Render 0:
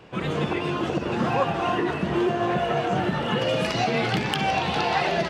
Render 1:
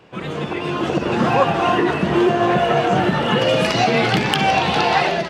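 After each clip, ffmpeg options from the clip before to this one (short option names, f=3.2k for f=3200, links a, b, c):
-af "lowshelf=f=72:g=-7.5,dynaudnorm=f=500:g=3:m=8dB"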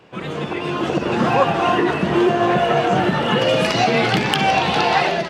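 -af "lowshelf=f=71:g=-5"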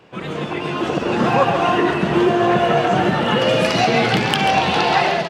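-af "aecho=1:1:137:0.398"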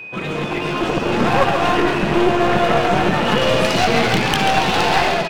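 -af "aeval=exprs='val(0)+0.02*sin(2*PI*2500*n/s)':c=same,aeval=exprs='clip(val(0),-1,0.0668)':c=same,volume=3dB"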